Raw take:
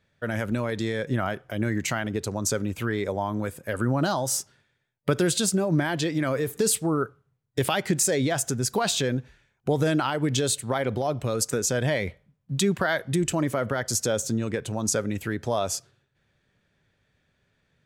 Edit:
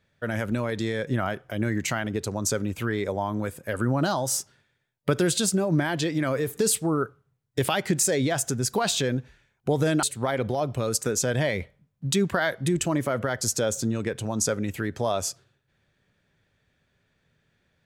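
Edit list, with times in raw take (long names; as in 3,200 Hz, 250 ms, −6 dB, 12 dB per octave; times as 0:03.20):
0:10.03–0:10.50: remove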